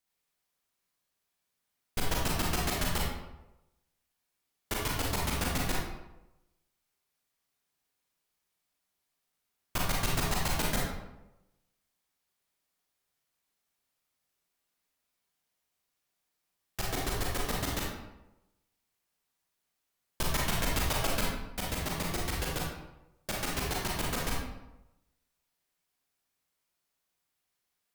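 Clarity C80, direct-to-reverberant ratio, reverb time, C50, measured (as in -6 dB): 3.5 dB, -3.5 dB, 0.95 s, 0.5 dB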